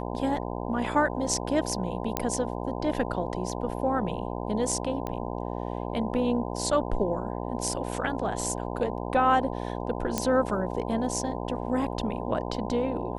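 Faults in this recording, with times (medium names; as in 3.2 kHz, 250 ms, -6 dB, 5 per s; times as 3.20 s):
buzz 60 Hz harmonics 17 -33 dBFS
2.17 s: pop -9 dBFS
5.07 s: pop -19 dBFS
10.18 s: pop -10 dBFS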